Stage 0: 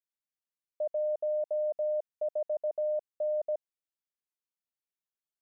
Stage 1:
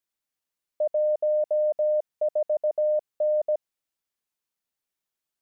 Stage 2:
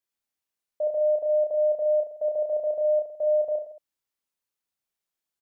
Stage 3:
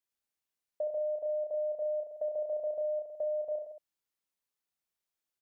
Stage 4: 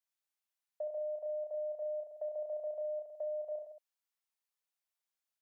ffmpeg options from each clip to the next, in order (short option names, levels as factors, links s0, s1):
-af "acontrast=82"
-af "aecho=1:1:30|66|109.2|161|223.2:0.631|0.398|0.251|0.158|0.1,volume=0.708"
-af "acompressor=threshold=0.0398:ratio=10,volume=0.708"
-af "highpass=f=590:w=0.5412,highpass=f=590:w=1.3066,volume=0.75"